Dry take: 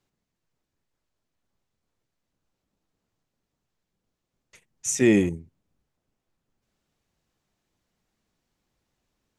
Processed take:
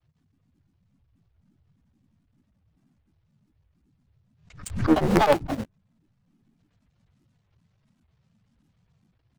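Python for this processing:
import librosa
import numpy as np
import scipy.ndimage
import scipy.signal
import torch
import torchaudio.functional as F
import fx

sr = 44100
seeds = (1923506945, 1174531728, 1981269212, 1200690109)

p1 = fx.cycle_switch(x, sr, every=3, mode='muted')
p2 = scipy.signal.sosfilt(scipy.signal.butter(2, 5400.0, 'lowpass', fs=sr, output='sos'), p1)
p3 = fx.env_lowpass_down(p2, sr, base_hz=1400.0, full_db=-35.0)
p4 = fx.peak_eq(p3, sr, hz=260.0, db=-15.0, octaves=0.35)
p5 = fx.hum_notches(p4, sr, base_hz=60, count=8)
p6 = p5 + 0.5 * np.pad(p5, (int(4.5 * sr / 1000.0), 0))[:len(p5)]
p7 = fx.dmg_noise_band(p6, sr, seeds[0], low_hz=78.0, high_hz=170.0, level_db=-70.0)
p8 = fx.quant_companded(p7, sr, bits=2)
p9 = p7 + F.gain(torch.from_numpy(p8), -8.5).numpy()
p10 = fx.granulator(p9, sr, seeds[1], grain_ms=100.0, per_s=23.0, spray_ms=260.0, spread_st=12)
p11 = fx.pre_swell(p10, sr, db_per_s=100.0)
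y = F.gain(torch.from_numpy(p11), 4.5).numpy()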